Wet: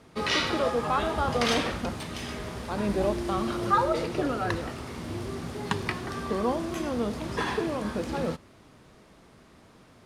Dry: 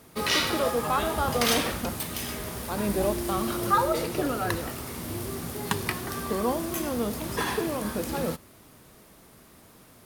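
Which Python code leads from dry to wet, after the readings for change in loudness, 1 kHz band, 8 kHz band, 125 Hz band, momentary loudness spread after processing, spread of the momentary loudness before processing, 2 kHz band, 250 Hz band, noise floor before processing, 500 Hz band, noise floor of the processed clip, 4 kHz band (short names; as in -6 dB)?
-1.0 dB, -0.5 dB, -8.5 dB, 0.0 dB, 11 LU, 10 LU, -1.0 dB, 0.0 dB, -54 dBFS, 0.0 dB, -55 dBFS, -2.5 dB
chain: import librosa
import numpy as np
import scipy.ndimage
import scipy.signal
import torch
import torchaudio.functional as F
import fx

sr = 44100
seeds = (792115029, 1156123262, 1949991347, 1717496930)

y = fx.air_absorb(x, sr, metres=86.0)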